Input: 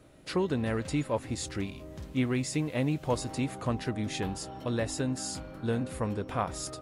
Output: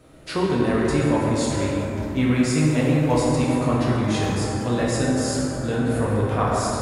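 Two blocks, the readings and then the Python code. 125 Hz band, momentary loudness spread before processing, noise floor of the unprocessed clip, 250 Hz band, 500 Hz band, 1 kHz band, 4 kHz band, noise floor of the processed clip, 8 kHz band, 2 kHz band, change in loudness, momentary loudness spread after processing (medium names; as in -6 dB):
+11.0 dB, 6 LU, -47 dBFS, +11.0 dB, +10.5 dB, +11.0 dB, +8.0 dB, -30 dBFS, +7.5 dB, +10.0 dB, +10.5 dB, 5 LU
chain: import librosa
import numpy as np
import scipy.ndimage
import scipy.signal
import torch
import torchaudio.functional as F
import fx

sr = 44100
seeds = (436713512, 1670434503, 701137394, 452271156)

y = fx.rev_plate(x, sr, seeds[0], rt60_s=3.6, hf_ratio=0.35, predelay_ms=0, drr_db=-6.0)
y = y * 10.0 ** (3.5 / 20.0)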